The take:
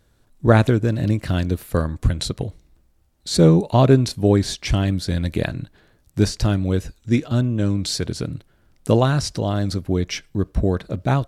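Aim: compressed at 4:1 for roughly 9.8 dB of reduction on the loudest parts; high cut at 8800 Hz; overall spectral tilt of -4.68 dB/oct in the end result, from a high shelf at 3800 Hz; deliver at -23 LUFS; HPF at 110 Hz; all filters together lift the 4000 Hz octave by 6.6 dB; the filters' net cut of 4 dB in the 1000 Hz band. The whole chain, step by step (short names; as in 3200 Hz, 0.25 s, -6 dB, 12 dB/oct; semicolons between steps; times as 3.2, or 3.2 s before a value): HPF 110 Hz; LPF 8800 Hz; bell 1000 Hz -6.5 dB; high shelf 3800 Hz +6.5 dB; bell 4000 Hz +4 dB; compressor 4:1, threshold -21 dBFS; gain +3.5 dB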